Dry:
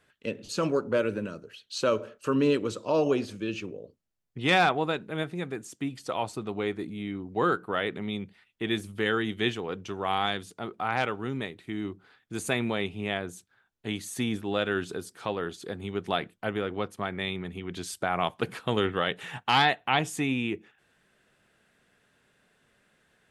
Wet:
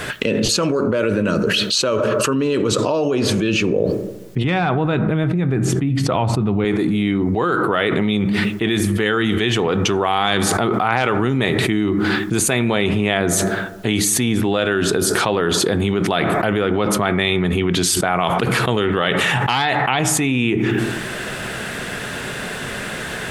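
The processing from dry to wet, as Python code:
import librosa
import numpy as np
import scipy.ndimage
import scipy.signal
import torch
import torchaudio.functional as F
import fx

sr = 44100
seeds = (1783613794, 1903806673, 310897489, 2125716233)

y = fx.bass_treble(x, sr, bass_db=12, treble_db=-12, at=(4.44, 6.65))
y = fx.rev_fdn(y, sr, rt60_s=0.93, lf_ratio=1.05, hf_ratio=0.4, size_ms=47.0, drr_db=14.5)
y = fx.env_flatten(y, sr, amount_pct=100)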